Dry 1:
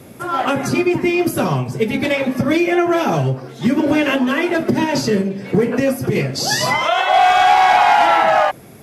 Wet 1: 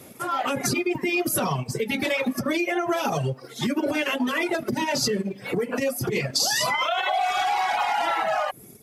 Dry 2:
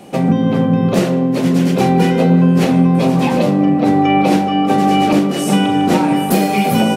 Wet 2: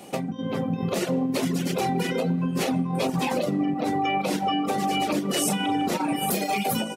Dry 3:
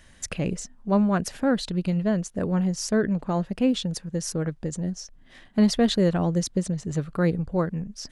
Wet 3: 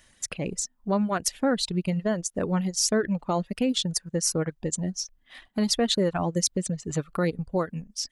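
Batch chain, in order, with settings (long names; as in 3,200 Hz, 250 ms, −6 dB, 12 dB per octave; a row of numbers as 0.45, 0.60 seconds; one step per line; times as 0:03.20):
downward compressor 12 to 1, threshold −18 dBFS
reverb reduction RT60 1.3 s
automatic gain control gain up to 8.5 dB
low-shelf EQ 260 Hz −6.5 dB
brickwall limiter −12.5 dBFS
transient designer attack 0 dB, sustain −5 dB
high-shelf EQ 4,700 Hz +6.5 dB
notch filter 1,600 Hz, Q 22
level −4 dB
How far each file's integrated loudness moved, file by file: −8.5, −12.0, −1.5 LU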